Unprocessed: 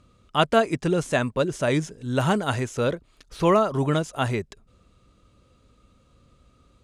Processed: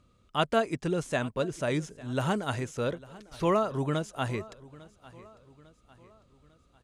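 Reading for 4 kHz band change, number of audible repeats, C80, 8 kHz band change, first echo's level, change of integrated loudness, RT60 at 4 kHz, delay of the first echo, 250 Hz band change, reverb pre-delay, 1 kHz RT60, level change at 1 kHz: −6.5 dB, 3, no reverb audible, −6.5 dB, −20.5 dB, −6.5 dB, no reverb audible, 850 ms, −6.5 dB, no reverb audible, no reverb audible, −6.5 dB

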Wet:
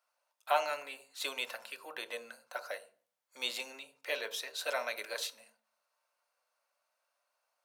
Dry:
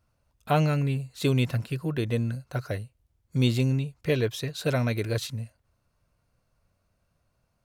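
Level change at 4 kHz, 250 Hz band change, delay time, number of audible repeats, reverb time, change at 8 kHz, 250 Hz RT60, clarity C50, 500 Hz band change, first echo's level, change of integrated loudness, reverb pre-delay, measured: −2.5 dB, −30.5 dB, no echo audible, no echo audible, 0.40 s, −2.5 dB, 0.65 s, 16.0 dB, −10.0 dB, no echo audible, −10.0 dB, 3 ms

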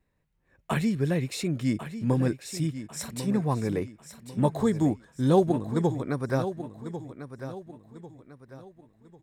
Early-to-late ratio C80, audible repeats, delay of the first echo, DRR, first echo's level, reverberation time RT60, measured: no reverb audible, 3, 1,096 ms, no reverb audible, −11.5 dB, no reverb audible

